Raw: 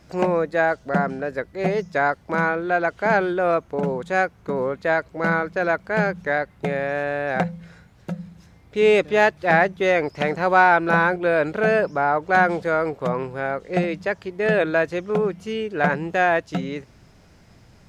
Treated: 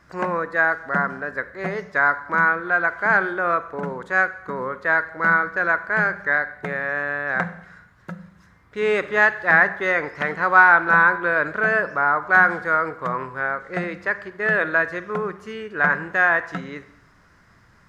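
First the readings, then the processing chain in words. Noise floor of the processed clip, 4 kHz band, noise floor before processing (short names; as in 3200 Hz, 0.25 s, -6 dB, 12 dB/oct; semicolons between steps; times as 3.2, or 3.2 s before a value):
-55 dBFS, -6.0 dB, -52 dBFS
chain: band shelf 1400 Hz +12 dB 1.2 oct; Schroeder reverb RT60 0.77 s, combs from 31 ms, DRR 13 dB; gain -6 dB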